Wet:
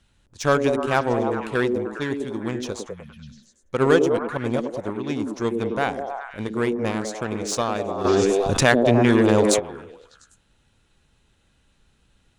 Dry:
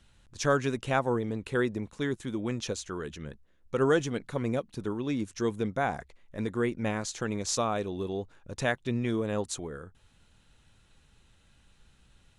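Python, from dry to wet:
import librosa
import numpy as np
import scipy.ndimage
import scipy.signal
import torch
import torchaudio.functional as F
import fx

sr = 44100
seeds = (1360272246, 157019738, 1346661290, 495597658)

p1 = fx.cheby_harmonics(x, sr, harmonics=(7,), levels_db=(-21,), full_scale_db=-11.5)
p2 = np.clip(10.0 ** (25.5 / 20.0) * p1, -1.0, 1.0) / 10.0 ** (25.5 / 20.0)
p3 = p1 + F.gain(torch.from_numpy(p2), -8.5).numpy()
p4 = fx.spec_repair(p3, sr, seeds[0], start_s=2.92, length_s=0.54, low_hz=240.0, high_hz=9700.0, source='after')
p5 = p4 + fx.echo_stepped(p4, sr, ms=100, hz=310.0, octaves=0.7, feedback_pct=70, wet_db=0, dry=0)
p6 = fx.env_flatten(p5, sr, amount_pct=70, at=(8.04, 9.58), fade=0.02)
y = F.gain(torch.from_numpy(p6), 5.0).numpy()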